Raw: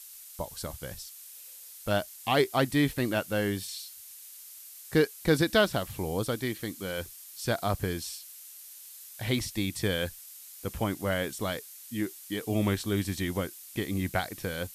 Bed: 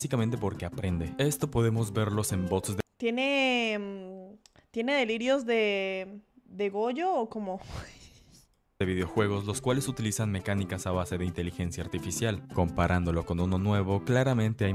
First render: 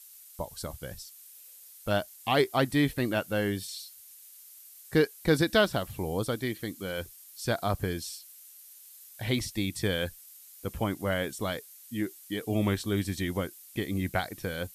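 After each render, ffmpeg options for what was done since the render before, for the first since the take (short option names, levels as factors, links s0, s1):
-af "afftdn=nr=6:nf=-48"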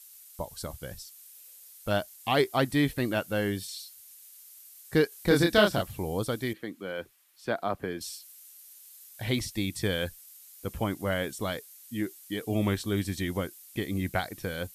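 -filter_complex "[0:a]asettb=1/sr,asplit=3[s0][s1][s2];[s0]atrim=end=5.094[s3];[s1]atrim=start=5.09:end=5.82,asetpts=PTS-STARTPTS,afade=t=in:d=0.004:c=qsin,afade=t=out:st=0.726:d=0.004:c=qsin,asplit=2[s4][s5];[s5]adelay=29,volume=0.75[s6];[s4][s6]amix=inputs=2:normalize=0,atrim=end_sample=32193[s7];[s2]atrim=start=5.816[s8];[s3][s7]acrossfade=d=0.004:c1=hsin:c2=qsin[s9];[s9][s8]acrossfade=d=0.004:c1=qsin:c2=hsin,asettb=1/sr,asplit=3[s10][s11][s12];[s10]atrim=end=6.534[s13];[s11]atrim=start=6.53:end=8.01,asetpts=PTS-STARTPTS,afade=t=in:d=0.004:c=qsin,afade=t=out:st=1.476:d=0.004:c=qsin,acrossover=split=180 3000:gain=0.158 1 0.178[s14][s15][s16];[s14][s15][s16]amix=inputs=3:normalize=0[s17];[s12]atrim=start=8.006[s18];[s13][s17]acrossfade=d=0.004:c1=hsin:c2=qsin[s19];[s19][s18]acrossfade=d=0.004:c1=qsin:c2=hsin"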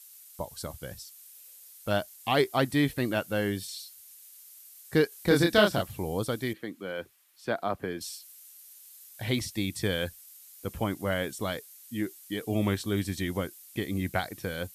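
-af "highpass=57"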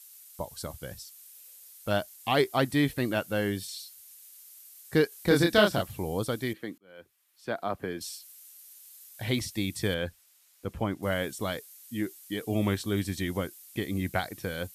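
-filter_complex "[0:a]asettb=1/sr,asplit=3[s0][s1][s2];[s0]atrim=end=9.944[s3];[s1]atrim=start=9.94:end=11.03,asetpts=PTS-STARTPTS,afade=t=in:d=0.004:c=qsin,afade=t=out:st=1.086:d=0.004:c=qsin,lowpass=f=2600:p=1[s4];[s2]atrim=start=11.026[s5];[s3][s4]acrossfade=d=0.004:c1=hsin:c2=qsin[s6];[s6][s5]acrossfade=d=0.004:c1=qsin:c2=hsin,asplit=2[s7][s8];[s7]atrim=end=6.78,asetpts=PTS-STARTPTS,afade=t=out:st=6.776:d=0.004:c=hsin[s9];[s8]atrim=start=6.78,asetpts=PTS-STARTPTS,afade=t=in:d=1.38:c=qsin[s10];[s9][s10]concat=n=2:v=0:a=1"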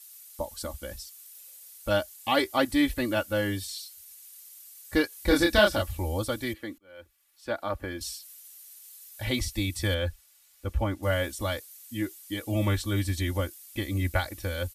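-af "asubboost=boost=11.5:cutoff=58,aecho=1:1:3.5:0.83"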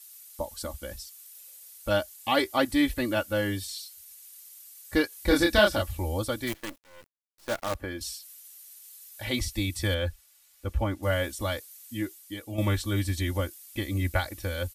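-filter_complex "[0:a]asplit=3[s0][s1][s2];[s0]afade=t=out:st=6.46:d=0.02[s3];[s1]acrusher=bits=6:dc=4:mix=0:aa=0.000001,afade=t=in:st=6.46:d=0.02,afade=t=out:st=7.74:d=0.02[s4];[s2]afade=t=in:st=7.74:d=0.02[s5];[s3][s4][s5]amix=inputs=3:normalize=0,asettb=1/sr,asplit=3[s6][s7][s8];[s6]atrim=end=8.624[s9];[s7]atrim=start=8.62:end=9.34,asetpts=PTS-STARTPTS,afade=t=in:d=0.004:c=qsin,afade=t=out:st=0.716:d=0.004:c=qsin,lowshelf=f=170:g=-8[s10];[s8]atrim=start=9.336[s11];[s9][s10]acrossfade=d=0.004:c1=hsin:c2=qsin[s12];[s12][s11]acrossfade=d=0.004:c1=qsin:c2=hsin,asplit=2[s13][s14];[s13]atrim=end=12.58,asetpts=PTS-STARTPTS,afade=t=out:st=11.92:d=0.66:silence=0.375837[s15];[s14]atrim=start=12.58,asetpts=PTS-STARTPTS,afade=t=in:d=0.004:c=hsin:silence=0.375837[s16];[s15][s16]concat=n=2:v=0:a=1"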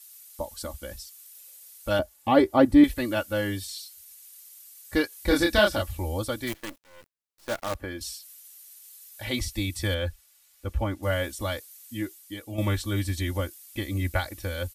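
-filter_complex "[0:a]asettb=1/sr,asplit=3[s0][s1][s2];[s0]atrim=end=1.994[s3];[s1]atrim=start=1.99:end=2.84,asetpts=PTS-STARTPTS,afade=t=in:d=0.004:c=qsin,afade=t=out:st=0.846:d=0.004:c=qsin,tiltshelf=f=1300:g=10[s4];[s2]atrim=start=2.836[s5];[s3][s4]acrossfade=d=0.004:c1=hsin:c2=qsin[s6];[s6][s5]acrossfade=d=0.004:c1=qsin:c2=hsin"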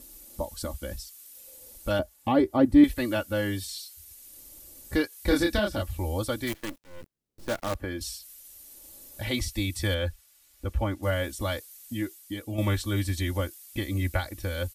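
-filter_complex "[0:a]acrossover=split=400[s0][s1];[s0]acompressor=mode=upward:threshold=0.0355:ratio=2.5[s2];[s1]alimiter=limit=0.119:level=0:latency=1:release=421[s3];[s2][s3]amix=inputs=2:normalize=0"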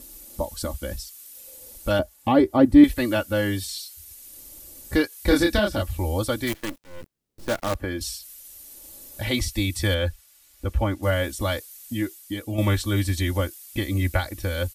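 -af "volume=1.68"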